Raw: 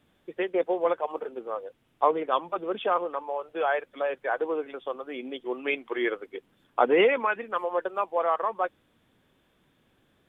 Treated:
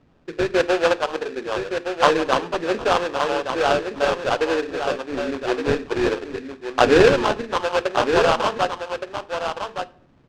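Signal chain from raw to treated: bass shelf 370 Hz +7 dB; hum notches 50/100/150/200/250/300/350/400/450 Hz; sample-rate reducer 2.1 kHz, jitter 20%; distance through air 130 m; delay 1168 ms -7 dB; on a send at -16 dB: reverberation RT60 0.60 s, pre-delay 7 ms; on the sum: trim +5.5 dB

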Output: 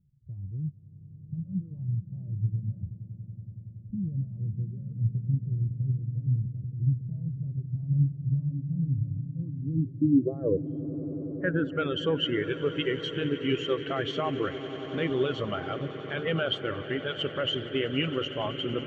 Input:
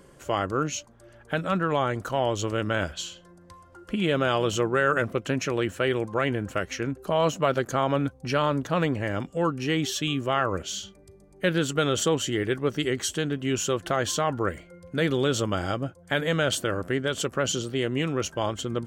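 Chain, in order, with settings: reverb removal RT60 1.4 s; peak limiter -19 dBFS, peak gain reduction 9 dB; low-pass sweep 130 Hz -> 2.8 kHz, 9.39–11.93 s; on a send: echo with a slow build-up 93 ms, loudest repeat 8, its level -14 dB; on the sum: spectral contrast expander 1.5:1

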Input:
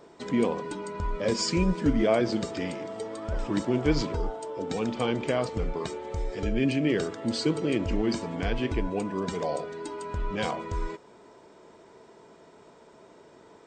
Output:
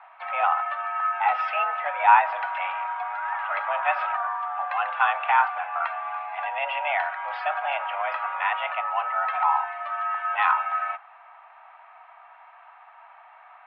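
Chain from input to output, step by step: dynamic bell 1.1 kHz, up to +7 dB, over -47 dBFS, Q 1.3; mistuned SSB +290 Hz 510–2500 Hz; trim +7 dB

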